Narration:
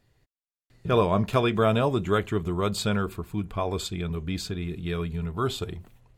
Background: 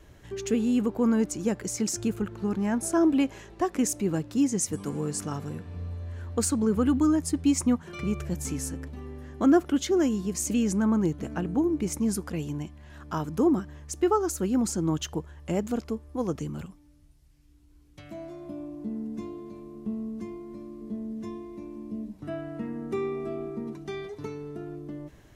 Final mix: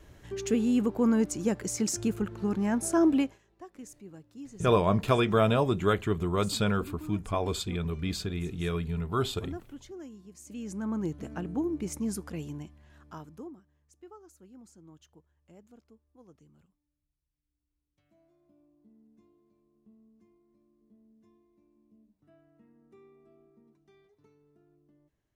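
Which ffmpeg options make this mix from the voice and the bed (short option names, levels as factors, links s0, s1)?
-filter_complex "[0:a]adelay=3750,volume=0.841[s0];[1:a]volume=5.01,afade=t=out:st=3.16:d=0.22:silence=0.105925,afade=t=in:st=10.44:d=0.72:silence=0.177828,afade=t=out:st=12.42:d=1.14:silence=0.0841395[s1];[s0][s1]amix=inputs=2:normalize=0"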